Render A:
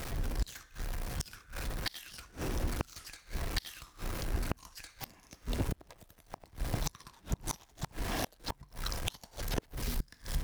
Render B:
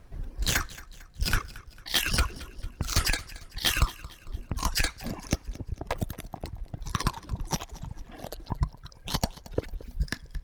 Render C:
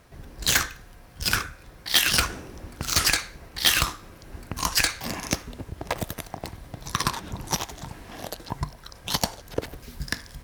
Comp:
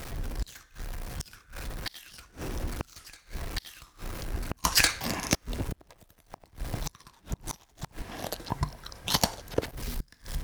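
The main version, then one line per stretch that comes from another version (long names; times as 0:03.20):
A
0:04.64–0:05.35: punch in from C
0:08.02–0:09.71: punch in from C
not used: B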